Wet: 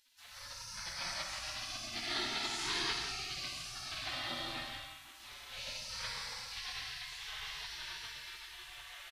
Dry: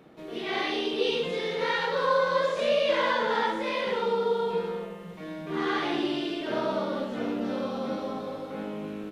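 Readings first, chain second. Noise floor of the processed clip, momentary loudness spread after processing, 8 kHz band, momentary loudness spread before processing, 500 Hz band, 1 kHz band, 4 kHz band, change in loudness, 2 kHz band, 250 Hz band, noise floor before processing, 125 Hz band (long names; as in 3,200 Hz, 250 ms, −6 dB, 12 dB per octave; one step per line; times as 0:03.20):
−54 dBFS, 13 LU, can't be measured, 11 LU, −27.0 dB, −16.0 dB, −3.0 dB, −11.0 dB, −9.5 dB, −21.5 dB, −41 dBFS, −11.5 dB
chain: gate on every frequency bin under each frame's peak −30 dB weak
reverb whose tail is shaped and stops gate 210 ms flat, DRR 0.5 dB
downsampling to 32,000 Hz
level +5.5 dB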